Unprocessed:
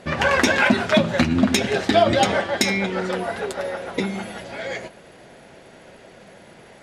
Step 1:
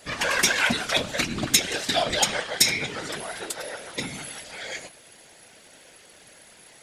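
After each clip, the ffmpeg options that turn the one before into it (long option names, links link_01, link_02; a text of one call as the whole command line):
ffmpeg -i in.wav -af "crystalizer=i=8.5:c=0,afftfilt=real='hypot(re,im)*cos(2*PI*random(0))':imag='hypot(re,im)*sin(2*PI*random(1))':win_size=512:overlap=0.75,volume=-6dB" out.wav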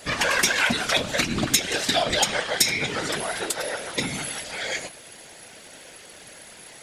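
ffmpeg -i in.wav -af "acompressor=threshold=-28dB:ratio=2,volume=6dB" out.wav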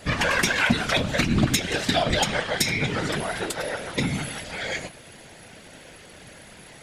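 ffmpeg -i in.wav -af "bass=frequency=250:gain=9,treble=frequency=4000:gain=-6" out.wav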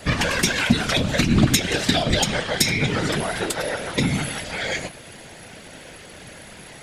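ffmpeg -i in.wav -filter_complex "[0:a]acrossover=split=450|3000[link_01][link_02][link_03];[link_02]acompressor=threshold=-29dB:ratio=6[link_04];[link_01][link_04][link_03]amix=inputs=3:normalize=0,volume=4.5dB" out.wav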